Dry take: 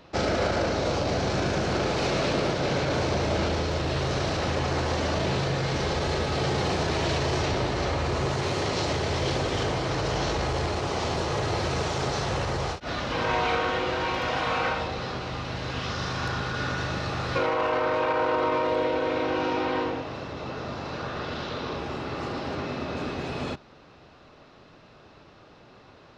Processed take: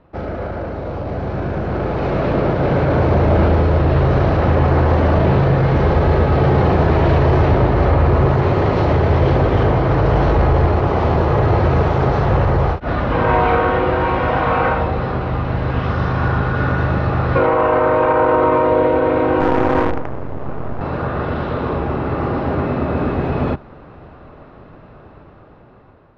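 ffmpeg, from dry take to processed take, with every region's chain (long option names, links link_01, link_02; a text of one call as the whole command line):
ffmpeg -i in.wav -filter_complex "[0:a]asettb=1/sr,asplit=3[link_01][link_02][link_03];[link_01]atrim=end=19.404[link_04];[link_02]atrim=start=19.4:end=20.81,asetpts=PTS-STARTPTS,afade=type=in:duration=0.004:curve=qsin,afade=type=out:start_time=1.406:duration=0.004:curve=qsin,adynamicsmooth=sensitivity=4:basefreq=690,acrusher=bits=5:dc=4:mix=0:aa=0.000001[link_05];[link_03]atrim=start=20.806[link_06];[link_04][link_05]acrossfade=duration=0.004:curve1=hsin:curve2=qsin[link_07];[link_07][link_06]acrossfade=duration=0.004:curve1=qsin:curve2=hsin,lowpass=1500,dynaudnorm=framelen=860:gausssize=5:maxgain=13dB,lowshelf=frequency=100:gain=9,volume=-1dB" out.wav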